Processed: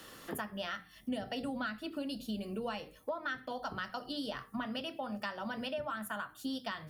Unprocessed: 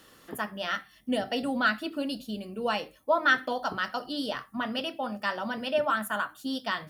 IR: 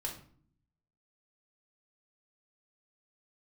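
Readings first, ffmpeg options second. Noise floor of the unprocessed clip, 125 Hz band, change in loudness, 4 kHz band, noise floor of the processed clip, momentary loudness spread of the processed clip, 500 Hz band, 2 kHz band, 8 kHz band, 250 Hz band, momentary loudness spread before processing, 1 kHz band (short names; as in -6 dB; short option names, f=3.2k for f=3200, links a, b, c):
-58 dBFS, -2.5 dB, -9.5 dB, -8.5 dB, -59 dBFS, 3 LU, -9.5 dB, -12.0 dB, -6.0 dB, -6.0 dB, 8 LU, -10.5 dB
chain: -filter_complex "[0:a]bandreject=f=60:t=h:w=6,bandreject=f=120:t=h:w=6,bandreject=f=180:t=h:w=6,bandreject=f=240:t=h:w=6,bandreject=f=300:t=h:w=6,bandreject=f=360:t=h:w=6,bandreject=f=420:t=h:w=6,bandreject=f=480:t=h:w=6,acrossover=split=130[a][b];[b]acompressor=threshold=-41dB:ratio=6[c];[a][c]amix=inputs=2:normalize=0,volume=4dB"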